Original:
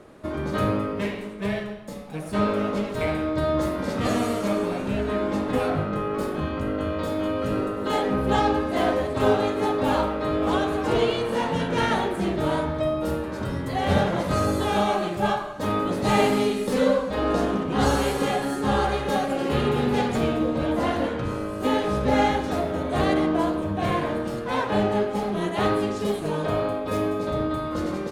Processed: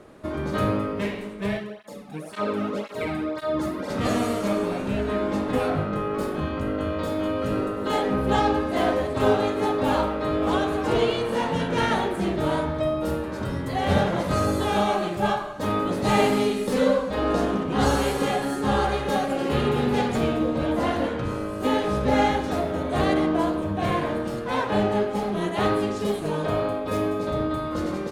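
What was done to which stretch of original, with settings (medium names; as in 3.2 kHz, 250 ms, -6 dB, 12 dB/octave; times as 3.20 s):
1.57–3.90 s: cancelling through-zero flanger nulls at 1.9 Hz, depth 2.2 ms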